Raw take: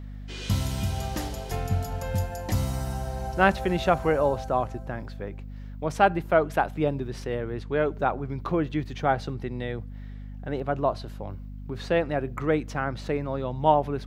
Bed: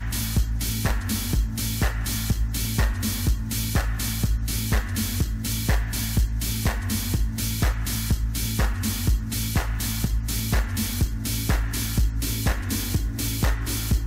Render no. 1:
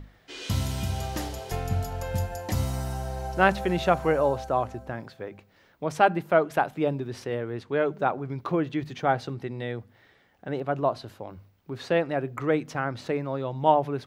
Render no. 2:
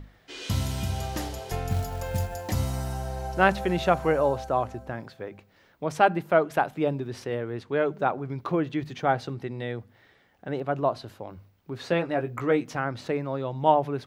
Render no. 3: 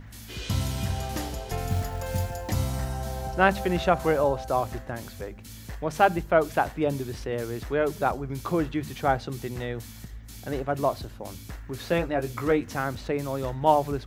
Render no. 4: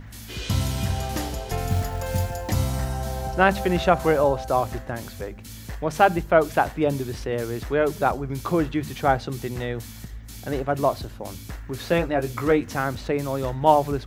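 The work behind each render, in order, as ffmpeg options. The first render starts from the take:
-af "bandreject=f=50:t=h:w=6,bandreject=f=100:t=h:w=6,bandreject=f=150:t=h:w=6,bandreject=f=200:t=h:w=6,bandreject=f=250:t=h:w=6"
-filter_complex "[0:a]asettb=1/sr,asplit=3[a][b][c];[a]atrim=end=1.694[d];[b]atrim=start=1.69:end=2.52,asetpts=PTS-STARTPTS,afade=t=in:d=0.004:c=qsin,afade=t=out:st=0.826:d=0.004:c=qsin,acrusher=bits=5:mode=log:mix=0:aa=0.000001[e];[c]atrim=start=2.516[f];[d][e]acrossfade=d=0.004:c1=hsin:c2=qsin[g];[g][f]acrossfade=d=0.004:c1=qsin:c2=hsin,asettb=1/sr,asplit=3[h][i][j];[h]atrim=end=11.844[k];[i]atrim=start=11.84:end=12.77,asetpts=PTS-STARTPTS,afade=t=in:d=0.004:c=qsin,afade=t=out:st=0.926:d=0.004:c=qsin,asplit=2[l][m];[m]adelay=17,volume=-6.5dB[n];[l][n]amix=inputs=2:normalize=0,atrim=end_sample=41013[o];[j]atrim=start=12.766[p];[k][o]acrossfade=d=0.004:c1=hsin:c2=qsin[q];[q][p]acrossfade=d=0.004:c1=qsin:c2=hsin"
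-filter_complex "[1:a]volume=-17dB[a];[0:a][a]amix=inputs=2:normalize=0"
-af "volume=3.5dB,alimiter=limit=-3dB:level=0:latency=1"

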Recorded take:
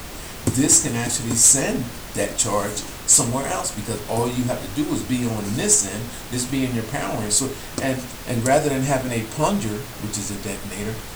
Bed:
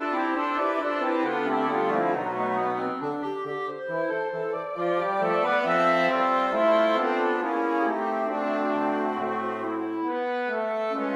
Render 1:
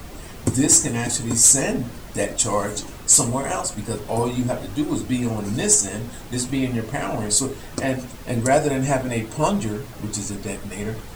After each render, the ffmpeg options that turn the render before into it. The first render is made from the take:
-af "afftdn=nr=8:nf=-35"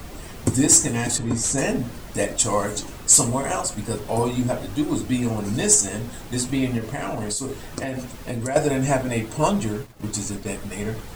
-filter_complex "[0:a]asettb=1/sr,asplit=3[a][b][c];[a]atrim=end=1.184[d];[b]atrim=start=1.18:end=1.58,asetpts=PTS-STARTPTS,afade=t=in:d=0.004:c=qsin,afade=t=out:st=0.396:d=0.004:c=qsin,aemphasis=mode=reproduction:type=75fm[e];[c]atrim=start=1.576[f];[d][e]acrossfade=d=0.004:c1=hsin:c2=qsin[g];[g][f]acrossfade=d=0.004:c1=qsin:c2=hsin,asettb=1/sr,asplit=3[h][i][j];[h]atrim=end=6.784[k];[i]atrim=start=6.78:end=8.56,asetpts=PTS-STARTPTS,afade=t=in:d=0.004:c=qsin,afade=t=out:st=1.776:d=0.004:c=qsin,acompressor=threshold=-23dB:ratio=6:attack=3.2:release=140:knee=1:detection=peak[l];[j]atrim=start=8.556[m];[k][l]acrossfade=d=0.004:c1=hsin:c2=qsin[n];[n][m]acrossfade=d=0.004:c1=qsin:c2=hsin,asettb=1/sr,asplit=3[o][p][q];[o]atrim=end=9.554[r];[p]atrim=start=9.55:end=10.56,asetpts=PTS-STARTPTS,afade=t=in:d=0.004:c=qsin,afade=t=out:st=1.006:d=0.004:c=qsin,agate=range=-33dB:threshold=-30dB:ratio=3:release=100:detection=peak[s];[q]atrim=start=10.556[t];[r][s]acrossfade=d=0.004:c1=hsin:c2=qsin[u];[u][t]acrossfade=d=0.004:c1=qsin:c2=hsin"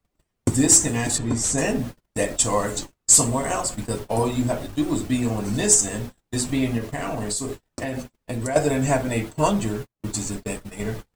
-af "agate=range=-41dB:threshold=-30dB:ratio=16:detection=peak"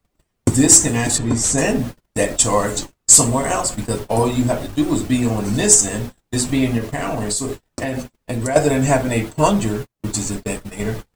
-af "volume=5dB"

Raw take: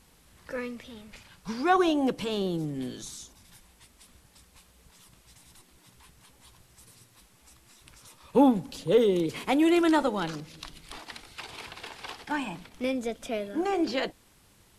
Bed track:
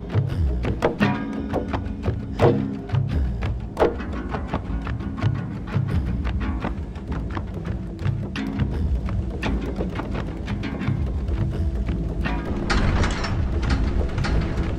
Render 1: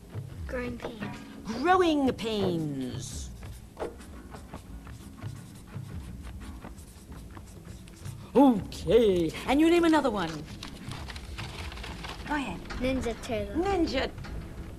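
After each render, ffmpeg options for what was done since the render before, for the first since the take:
-filter_complex "[1:a]volume=-17dB[a];[0:a][a]amix=inputs=2:normalize=0"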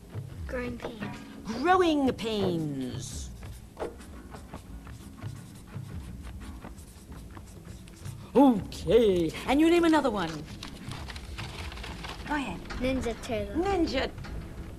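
-af anull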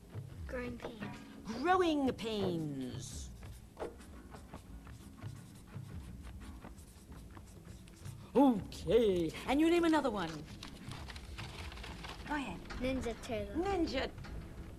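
-af "volume=-7.5dB"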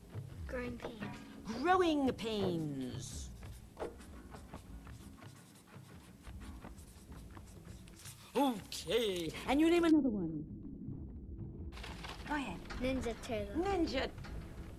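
-filter_complex "[0:a]asettb=1/sr,asplit=3[a][b][c];[a]atrim=end=5.174[d];[b]atrim=start=5.17:end=6.27,asetpts=PTS-STARTPTS,afade=t=in:d=0.004:c=qsin,afade=t=out:st=1.096:d=0.004:c=qsin,highpass=f=300:p=1[e];[c]atrim=start=6.266[f];[d][e]acrossfade=d=0.004:c1=hsin:c2=qsin[g];[g][f]acrossfade=d=0.004:c1=qsin:c2=hsin,asettb=1/sr,asplit=3[h][i][j];[h]atrim=end=7.994[k];[i]atrim=start=7.99:end=9.27,asetpts=PTS-STARTPTS,afade=t=in:d=0.004:c=qsin,afade=t=out:st=1.276:d=0.004:c=qsin,tiltshelf=f=1.1k:g=-8[l];[j]atrim=start=9.266[m];[k][l]acrossfade=d=0.004:c1=hsin:c2=qsin[n];[n][m]acrossfade=d=0.004:c1=qsin:c2=hsin,asplit=3[o][p][q];[o]afade=t=out:st=9.9:d=0.02[r];[p]lowpass=f=290:t=q:w=2.2,afade=t=in:st=9.9:d=0.02,afade=t=out:st=11.72:d=0.02[s];[q]afade=t=in:st=11.72:d=0.02[t];[r][s][t]amix=inputs=3:normalize=0"

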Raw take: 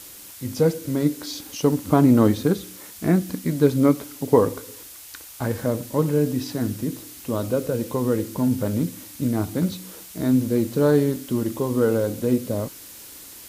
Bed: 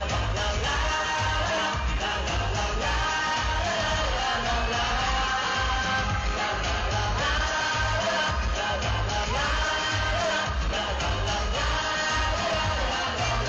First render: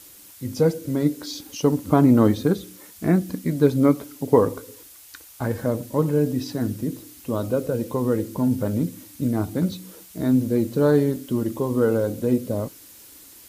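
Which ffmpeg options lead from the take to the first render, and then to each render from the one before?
-af "afftdn=nr=6:nf=-42"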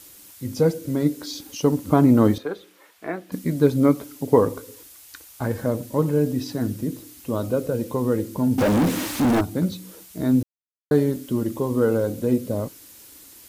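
-filter_complex "[0:a]asettb=1/sr,asplit=3[a][b][c];[a]atrim=end=2.384[d];[b]atrim=start=2.38:end=3.32,asetpts=PTS-STARTPTS,afade=t=in:d=0.004:c=qsin,afade=t=out:st=0.936:d=0.004:c=qsin,acrossover=split=430 3400:gain=0.0708 1 0.178[e][f][g];[e][f][g]amix=inputs=3:normalize=0[h];[c]atrim=start=3.316[i];[d][h]acrossfade=d=0.004:c1=hsin:c2=qsin[j];[j][i]acrossfade=d=0.004:c1=qsin:c2=hsin,asettb=1/sr,asplit=3[k][l][m];[k]atrim=end=8.584[n];[l]atrim=start=8.58:end=9.41,asetpts=PTS-STARTPTS,afade=t=in:d=0.004:c=qsin,afade=t=out:st=0.826:d=0.004:c=qsin,asplit=2[o][p];[p]highpass=f=720:p=1,volume=40dB,asoftclip=type=tanh:threshold=-11.5dB[q];[o][q]amix=inputs=2:normalize=0,lowpass=f=1.8k:p=1,volume=-6dB[r];[m]atrim=start=9.406[s];[n][r]acrossfade=d=0.004:c1=hsin:c2=qsin[t];[t][s]acrossfade=d=0.004:c1=qsin:c2=hsin,asplit=3[u][v][w];[u]atrim=end=10.43,asetpts=PTS-STARTPTS,afade=t=out:st=10.426:d=0.004:c=hsin[x];[v]atrim=start=10.43:end=10.91,asetpts=PTS-STARTPTS,volume=0[y];[w]atrim=start=10.91,asetpts=PTS-STARTPTS,afade=t=in:d=0.004:c=hsin[z];[x][y][z]concat=n=3:v=0:a=1"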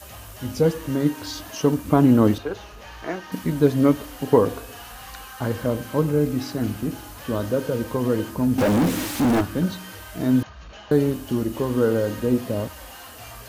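-filter_complex "[1:a]volume=-15dB[a];[0:a][a]amix=inputs=2:normalize=0"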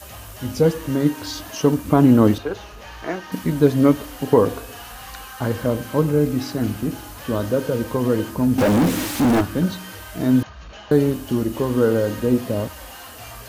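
-af "volume=2.5dB,alimiter=limit=-2dB:level=0:latency=1"

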